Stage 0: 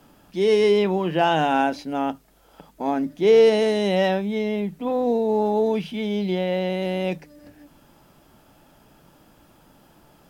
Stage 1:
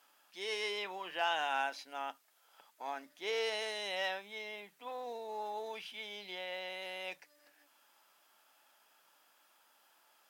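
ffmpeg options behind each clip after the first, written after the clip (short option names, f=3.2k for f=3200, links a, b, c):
-af "highpass=1.1k,volume=-7.5dB"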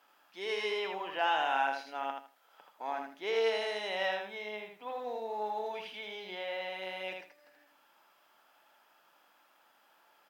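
-af "equalizer=f=9.4k:w=0.4:g=-12,aecho=1:1:80|160|240:0.596|0.131|0.0288,volume=4dB"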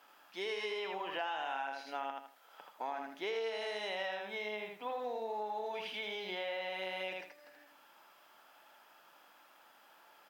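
-af "acompressor=threshold=-40dB:ratio=6,volume=4dB"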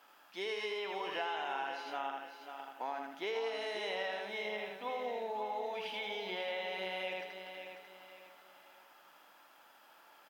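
-af "aecho=1:1:543|1086|1629|2172:0.376|0.139|0.0515|0.019"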